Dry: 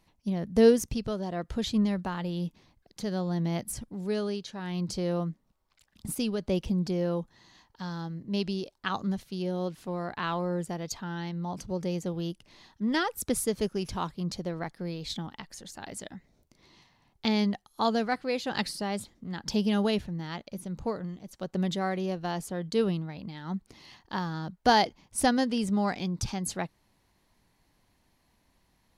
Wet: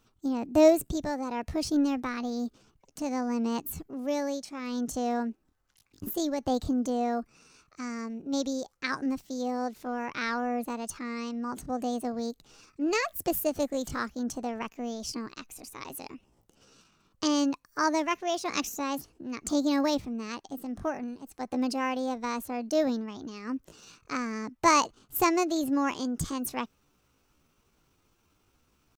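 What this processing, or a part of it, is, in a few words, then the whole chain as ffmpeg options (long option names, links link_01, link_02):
chipmunk voice: -af "asetrate=60591,aresample=44100,atempo=0.727827"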